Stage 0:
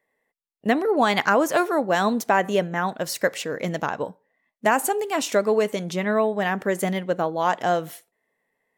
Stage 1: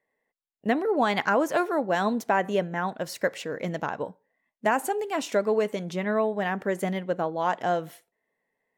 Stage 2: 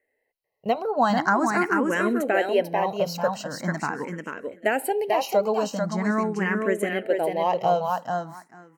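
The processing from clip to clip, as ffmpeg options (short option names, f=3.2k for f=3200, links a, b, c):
-af "highshelf=f=4.1k:g=-7,bandreject=f=1.2k:w=22,volume=-3.5dB"
-filter_complex "[0:a]asuperstop=centerf=3500:order=8:qfactor=6.5,asplit=2[a][b];[b]aecho=0:1:442|884|1326:0.631|0.0946|0.0142[c];[a][c]amix=inputs=2:normalize=0,asplit=2[d][e];[e]afreqshift=0.43[f];[d][f]amix=inputs=2:normalize=1,volume=4.5dB"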